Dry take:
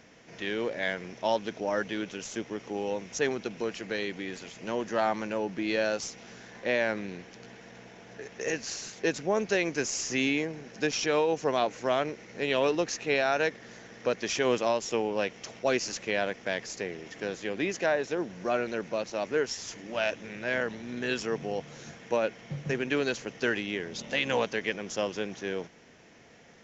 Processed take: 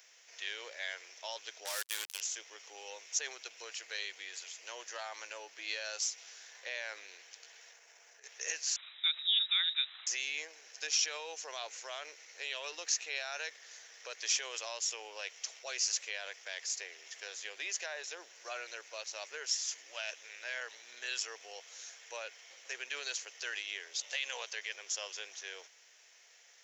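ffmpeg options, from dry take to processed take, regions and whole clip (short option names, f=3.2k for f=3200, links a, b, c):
-filter_complex "[0:a]asettb=1/sr,asplit=3[a][b][c];[a]atrim=end=1.654[d];[b]atrim=start=1.65:end=2.21,asetpts=PTS-STARTPTS,afade=t=in:d=0.004:c=qsin,afade=t=out:st=0.556:d=0.004:c=qsin,highshelf=f=2.4k:g=4,acrusher=bits=4:mix=0:aa=0.5[e];[c]atrim=start=2.206[f];[d][e]acrossfade=d=0.004:c1=hsin:c2=qsin[g];[g][f]acrossfade=d=0.004:c1=qsin:c2=hsin,asettb=1/sr,asplit=3[h][i][j];[h]atrim=end=7.734[k];[i]atrim=start=7.73:end=8.24,asetpts=PTS-STARTPTS,afade=t=in:d=0.004:c=qsin,afade=t=out:st=0.506:d=0.004:c=qsin,equalizer=f=3.6k:t=o:w=0.79:g=-7,acompressor=threshold=-46dB:ratio=10:attack=3.2:release=140:knee=1:detection=peak[l];[j]atrim=start=8.236[m];[k][l]acrossfade=d=0.004:c1=hsin:c2=qsin[n];[n][m]acrossfade=d=0.004:c1=qsin:c2=hsin,asettb=1/sr,asplit=3[o][p][q];[o]atrim=end=8.764[r];[p]atrim=start=8.76:end=10.07,asetpts=PTS-STARTPTS,afade=t=in:d=0.004:c=qsin,afade=t=out:st=1.306:d=0.004:c=qsin,tremolo=f=26:d=0.261,lowpass=f=3.4k:t=q:w=0.5098,lowpass=f=3.4k:t=q:w=0.6013,lowpass=f=3.4k:t=q:w=0.9,lowpass=f=3.4k:t=q:w=2.563,afreqshift=-4000[s];[q]atrim=start=10.066[t];[r][s]acrossfade=d=0.004:c1=hsin:c2=qsin[u];[u][t]acrossfade=d=0.004:c1=qsin:c2=hsin,alimiter=limit=-19.5dB:level=0:latency=1:release=18,highpass=f=430:w=0.5412,highpass=f=430:w=1.3066,aderivative,volume=5.5dB"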